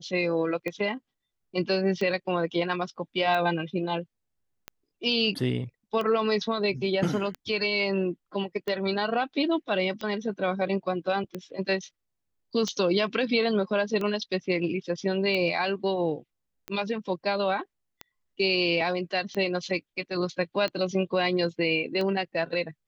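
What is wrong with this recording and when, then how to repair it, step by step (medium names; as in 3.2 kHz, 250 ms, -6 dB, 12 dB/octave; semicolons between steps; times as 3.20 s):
tick 45 rpm -19 dBFS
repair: de-click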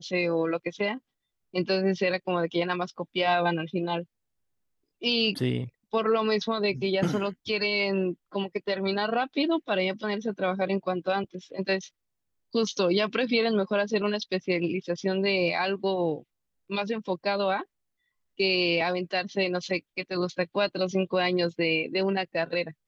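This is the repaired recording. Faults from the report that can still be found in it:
nothing left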